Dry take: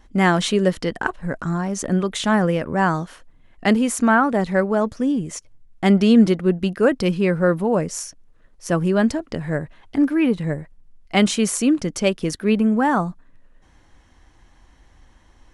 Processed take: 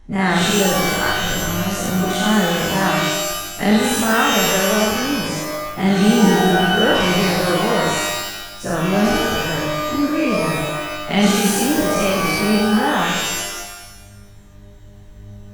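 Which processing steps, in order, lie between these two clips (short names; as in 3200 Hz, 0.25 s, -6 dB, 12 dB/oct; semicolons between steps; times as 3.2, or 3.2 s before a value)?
spectral dilation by 0.12 s; low shelf 90 Hz +10.5 dB; shimmer reverb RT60 1.1 s, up +12 st, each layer -2 dB, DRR 0 dB; gain -7.5 dB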